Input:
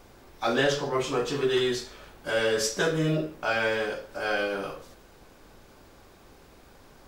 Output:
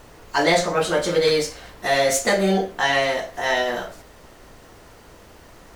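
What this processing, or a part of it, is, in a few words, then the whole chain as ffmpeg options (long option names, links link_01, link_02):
nightcore: -af "asetrate=54243,aresample=44100,volume=6.5dB"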